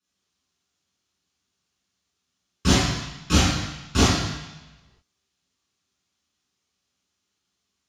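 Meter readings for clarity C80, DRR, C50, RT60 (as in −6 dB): 2.0 dB, −10.0 dB, −1.5 dB, 1.0 s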